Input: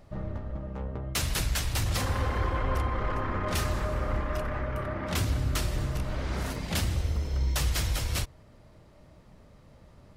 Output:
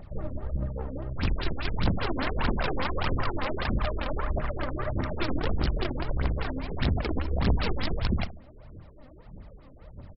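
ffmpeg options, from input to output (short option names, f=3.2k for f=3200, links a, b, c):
-filter_complex "[0:a]asettb=1/sr,asplit=3[a][b][c];[a]atrim=end=3.754[d];[b]atrim=start=3.75:end=4.56,asetpts=PTS-STARTPTS,afade=t=in:d=0.004:c=qsin,afade=t=out:st=0.806:d=0.004:c=qsin,lowshelf=f=400:g=-2.5[e];[c]atrim=start=4.556[f];[d][e]acrossfade=d=0.004:c1=hsin:c2=qsin[g];[g][f]acrossfade=d=0.004:c1=qsin:c2=hsin,asplit=2[h][i];[i]acompressor=threshold=-41dB:ratio=16,volume=-2.5dB[j];[h][j]amix=inputs=2:normalize=0,aeval=exprs='(mod(12.6*val(0)+1,2)-1)/12.6':c=same,aeval=exprs='0.0794*(cos(1*acos(clip(val(0)/0.0794,-1,1)))-cos(1*PI/2))+0.0178*(cos(2*acos(clip(val(0)/0.0794,-1,1)))-cos(2*PI/2))':c=same,aphaser=in_gain=1:out_gain=1:delay=4:decay=0.62:speed=1.6:type=triangular,asplit=2[k][l];[l]adelay=69,lowpass=f=1.6k:p=1,volume=-12.5dB,asplit=2[m][n];[n]adelay=69,lowpass=f=1.6k:p=1,volume=0.46,asplit=2[o][p];[p]adelay=69,lowpass=f=1.6k:p=1,volume=0.46,asplit=2[q][r];[r]adelay=69,lowpass=f=1.6k:p=1,volume=0.46,asplit=2[s][t];[t]adelay=69,lowpass=f=1.6k:p=1,volume=0.46[u];[m][o][q][s][u]amix=inputs=5:normalize=0[v];[k][v]amix=inputs=2:normalize=0,afftfilt=real='re*lt(b*sr/1024,480*pow(5700/480,0.5+0.5*sin(2*PI*5*pts/sr)))':imag='im*lt(b*sr/1024,480*pow(5700/480,0.5+0.5*sin(2*PI*5*pts/sr)))':win_size=1024:overlap=0.75,volume=-2dB"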